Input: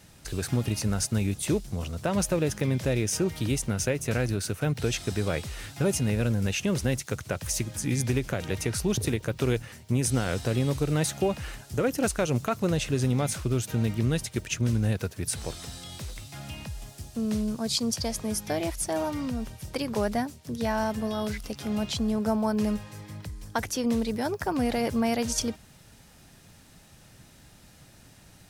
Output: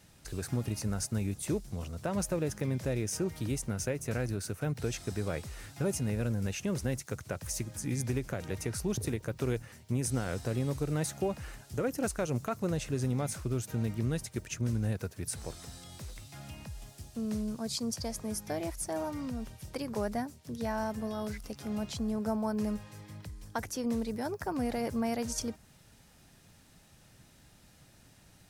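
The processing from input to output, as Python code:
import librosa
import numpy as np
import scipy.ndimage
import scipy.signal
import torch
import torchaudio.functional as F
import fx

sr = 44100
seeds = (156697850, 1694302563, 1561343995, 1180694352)

y = fx.dynamic_eq(x, sr, hz=3200.0, q=1.4, threshold_db=-50.0, ratio=4.0, max_db=-6)
y = y * librosa.db_to_amplitude(-6.0)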